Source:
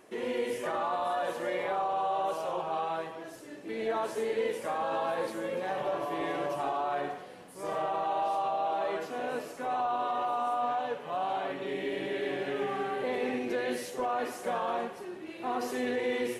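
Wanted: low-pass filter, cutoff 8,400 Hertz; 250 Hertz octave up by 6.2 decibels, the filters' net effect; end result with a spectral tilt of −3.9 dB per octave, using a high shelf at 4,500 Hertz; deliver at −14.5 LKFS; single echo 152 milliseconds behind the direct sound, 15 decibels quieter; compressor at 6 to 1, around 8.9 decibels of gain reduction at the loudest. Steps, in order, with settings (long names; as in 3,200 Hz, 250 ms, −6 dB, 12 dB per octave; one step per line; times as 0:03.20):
low-pass filter 8,400 Hz
parametric band 250 Hz +7.5 dB
high-shelf EQ 4,500 Hz −4 dB
downward compressor 6 to 1, threshold −34 dBFS
single-tap delay 152 ms −15 dB
level +23 dB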